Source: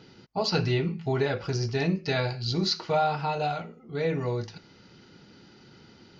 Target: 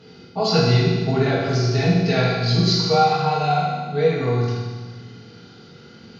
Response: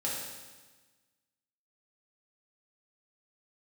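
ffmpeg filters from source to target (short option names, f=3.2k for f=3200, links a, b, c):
-filter_complex "[1:a]atrim=start_sample=2205,asetrate=37926,aresample=44100[a];[0:a][a]afir=irnorm=-1:irlink=0,volume=2dB"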